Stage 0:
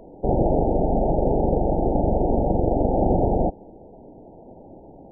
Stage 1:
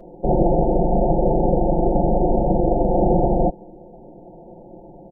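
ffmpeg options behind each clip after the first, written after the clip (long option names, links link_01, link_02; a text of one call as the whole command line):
ffmpeg -i in.wav -af "aecho=1:1:5.7:0.92" out.wav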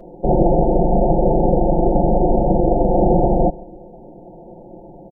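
ffmpeg -i in.wav -filter_complex "[0:a]asplit=2[link_01][link_02];[link_02]adelay=132,lowpass=frequency=2000:poles=1,volume=-24dB,asplit=2[link_03][link_04];[link_04]adelay=132,lowpass=frequency=2000:poles=1,volume=0.53,asplit=2[link_05][link_06];[link_06]adelay=132,lowpass=frequency=2000:poles=1,volume=0.53[link_07];[link_01][link_03][link_05][link_07]amix=inputs=4:normalize=0,volume=2.5dB" out.wav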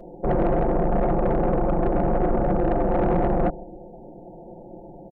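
ffmpeg -i in.wav -af "asoftclip=type=tanh:threshold=-13.5dB,volume=-2.5dB" out.wav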